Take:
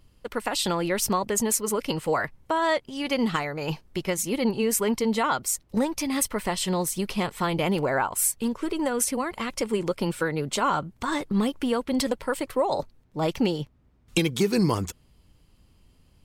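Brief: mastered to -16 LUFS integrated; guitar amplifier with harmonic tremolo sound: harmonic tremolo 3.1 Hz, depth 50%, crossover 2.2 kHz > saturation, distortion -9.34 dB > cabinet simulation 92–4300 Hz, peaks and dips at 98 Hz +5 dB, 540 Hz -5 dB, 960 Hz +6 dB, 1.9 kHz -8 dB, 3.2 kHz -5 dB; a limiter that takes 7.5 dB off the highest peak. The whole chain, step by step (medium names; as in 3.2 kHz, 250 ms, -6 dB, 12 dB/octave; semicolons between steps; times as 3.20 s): peak limiter -17.5 dBFS; harmonic tremolo 3.1 Hz, depth 50%, crossover 2.2 kHz; saturation -29.5 dBFS; cabinet simulation 92–4300 Hz, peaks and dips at 98 Hz +5 dB, 540 Hz -5 dB, 960 Hz +6 dB, 1.9 kHz -8 dB, 3.2 kHz -5 dB; trim +20 dB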